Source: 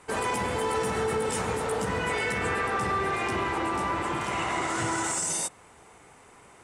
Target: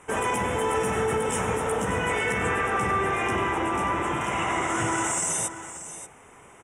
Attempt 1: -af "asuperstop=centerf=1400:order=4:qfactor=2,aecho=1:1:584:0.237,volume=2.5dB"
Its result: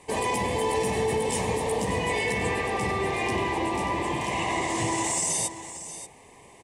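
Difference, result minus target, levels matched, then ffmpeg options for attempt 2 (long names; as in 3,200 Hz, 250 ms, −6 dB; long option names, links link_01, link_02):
4,000 Hz band +4.0 dB
-af "asuperstop=centerf=4400:order=4:qfactor=2,aecho=1:1:584:0.237,volume=2.5dB"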